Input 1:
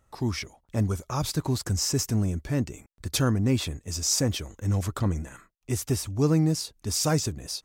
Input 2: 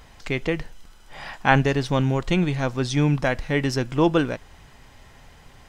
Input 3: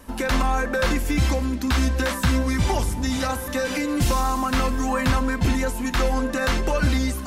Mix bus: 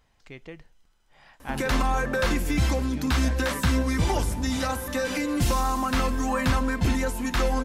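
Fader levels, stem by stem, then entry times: off, -17.5 dB, -2.5 dB; off, 0.00 s, 1.40 s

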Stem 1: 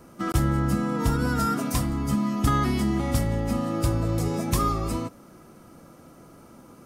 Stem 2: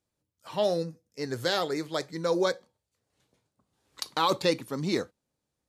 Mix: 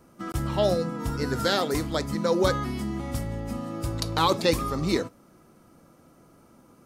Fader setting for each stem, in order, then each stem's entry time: -6.5, +2.5 dB; 0.00, 0.00 s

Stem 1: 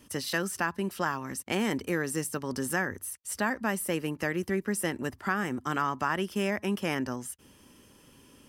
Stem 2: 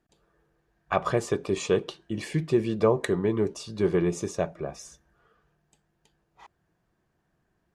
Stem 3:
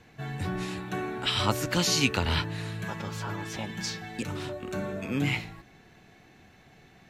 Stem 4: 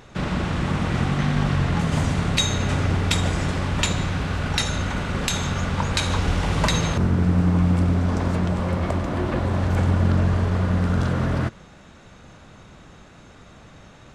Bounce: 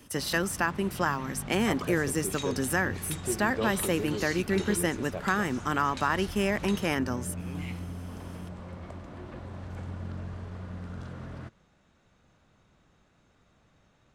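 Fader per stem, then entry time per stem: +2.0, -10.5, -14.5, -18.5 dB; 0.00, 0.75, 2.35, 0.00 s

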